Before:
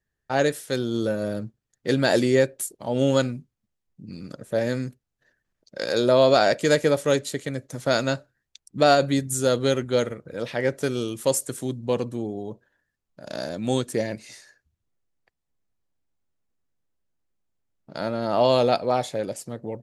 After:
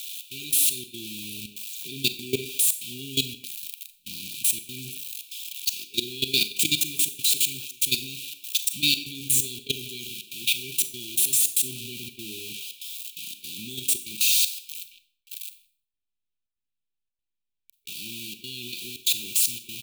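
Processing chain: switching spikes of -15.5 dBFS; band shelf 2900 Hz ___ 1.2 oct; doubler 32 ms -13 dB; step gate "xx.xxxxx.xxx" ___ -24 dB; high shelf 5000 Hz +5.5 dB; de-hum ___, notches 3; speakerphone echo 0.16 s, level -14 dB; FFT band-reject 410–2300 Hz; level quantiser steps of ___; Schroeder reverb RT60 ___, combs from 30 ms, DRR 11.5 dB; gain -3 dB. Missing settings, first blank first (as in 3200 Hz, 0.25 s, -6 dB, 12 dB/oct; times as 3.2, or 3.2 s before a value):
+12 dB, 144 bpm, 282.2 Hz, 17 dB, 0.47 s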